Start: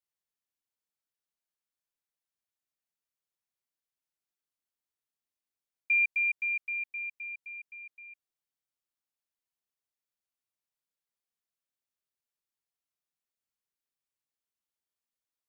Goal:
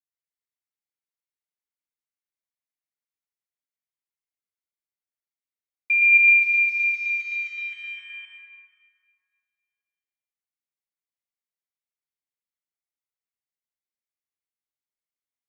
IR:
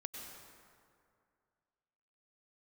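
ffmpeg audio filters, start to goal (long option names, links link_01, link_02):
-filter_complex "[0:a]afwtdn=0.00447,asplit=2[link_01][link_02];[link_02]equalizer=frequency=2100:width=4.8:gain=10.5[link_03];[1:a]atrim=start_sample=2205,adelay=117[link_04];[link_03][link_04]afir=irnorm=-1:irlink=0,volume=4dB[link_05];[link_01][link_05]amix=inputs=2:normalize=0,volume=5dB"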